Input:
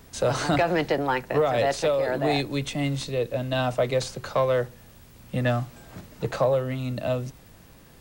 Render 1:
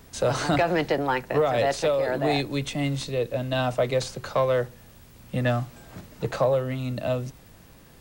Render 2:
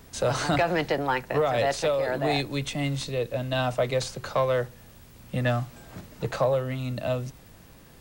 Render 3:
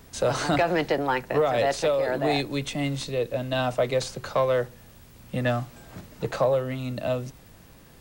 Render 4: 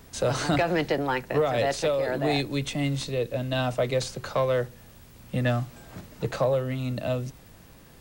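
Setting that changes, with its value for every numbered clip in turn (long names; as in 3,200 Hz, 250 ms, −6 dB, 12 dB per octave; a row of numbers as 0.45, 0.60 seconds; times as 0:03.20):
dynamic equaliser, frequency: 9,300, 330, 100, 870 Hertz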